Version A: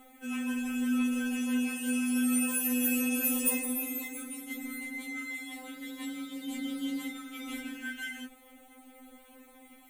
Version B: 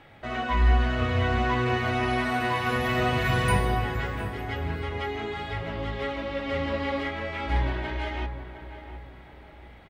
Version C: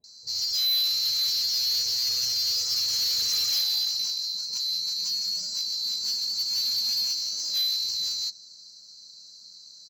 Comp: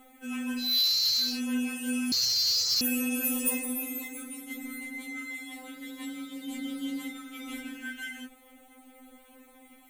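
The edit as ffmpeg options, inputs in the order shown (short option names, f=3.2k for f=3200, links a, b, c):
-filter_complex "[2:a]asplit=2[a][b];[0:a]asplit=3[c][d][e];[c]atrim=end=0.8[f];[a]atrim=start=0.56:end=1.41[g];[d]atrim=start=1.17:end=2.122[h];[b]atrim=start=2.118:end=2.812[i];[e]atrim=start=2.808[j];[f][g]acrossfade=d=0.24:c1=tri:c2=tri[k];[k][h]acrossfade=d=0.24:c1=tri:c2=tri[l];[l][i]acrossfade=d=0.004:c1=hsin:c2=hsin[m];[m][j]acrossfade=d=0.004:c1=hsin:c2=hsin"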